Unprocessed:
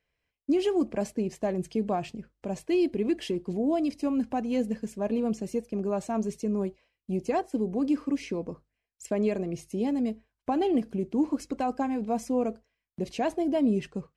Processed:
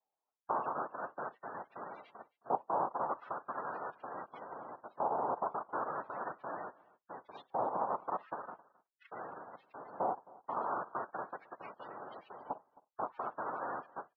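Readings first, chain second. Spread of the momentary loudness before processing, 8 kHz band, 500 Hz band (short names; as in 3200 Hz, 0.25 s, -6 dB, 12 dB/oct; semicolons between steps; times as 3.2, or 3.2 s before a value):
9 LU, under -35 dB, -12.5 dB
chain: bell 200 Hz +13 dB 0.26 oct; compressor 2:1, threshold -25 dBFS, peak gain reduction 6.5 dB; limiter -21 dBFS, peak gain reduction 5.5 dB; noise vocoder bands 2; modulation noise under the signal 31 dB; loudest bins only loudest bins 64; LFO band-pass saw up 0.4 Hz 810–3600 Hz; air absorption 470 m; echo 0.266 s -22.5 dB; gain +2 dB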